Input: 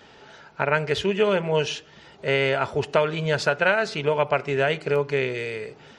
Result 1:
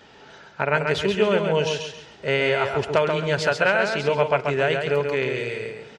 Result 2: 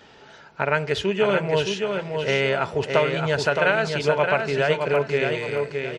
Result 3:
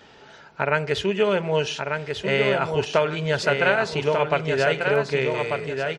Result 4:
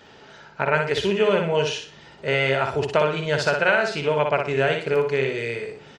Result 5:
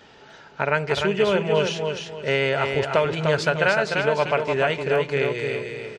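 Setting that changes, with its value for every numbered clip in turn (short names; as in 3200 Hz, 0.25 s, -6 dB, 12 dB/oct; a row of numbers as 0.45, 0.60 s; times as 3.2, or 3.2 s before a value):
feedback echo, time: 135, 618, 1192, 60, 300 ms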